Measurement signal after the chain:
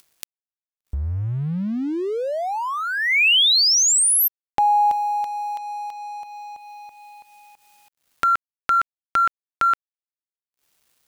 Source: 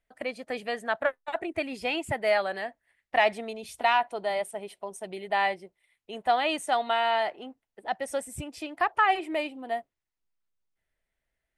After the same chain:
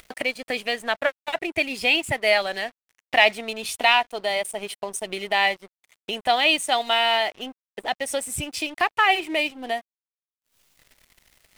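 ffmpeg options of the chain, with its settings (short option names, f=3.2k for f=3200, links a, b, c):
-af "highshelf=f=1.9k:t=q:w=1.5:g=7,acompressor=mode=upward:threshold=-26dB:ratio=2.5,aeval=exprs='sgn(val(0))*max(abs(val(0))-0.00473,0)':c=same,volume=4dB"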